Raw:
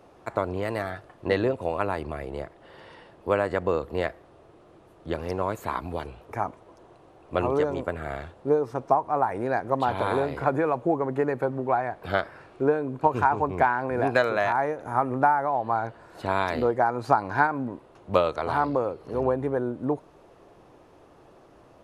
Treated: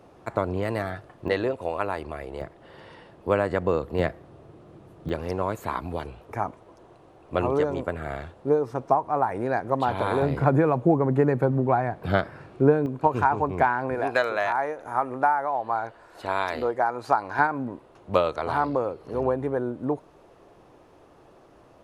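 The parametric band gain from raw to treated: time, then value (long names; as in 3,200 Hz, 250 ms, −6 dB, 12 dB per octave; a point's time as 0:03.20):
parametric band 140 Hz 2.2 octaves
+4.5 dB
from 0:01.28 −5 dB
from 0:02.41 +4.5 dB
from 0:03.99 +11 dB
from 0:05.09 +2 dB
from 0:10.22 +11 dB
from 0:12.86 +2 dB
from 0:13.95 −9.5 dB
from 0:17.39 −0.5 dB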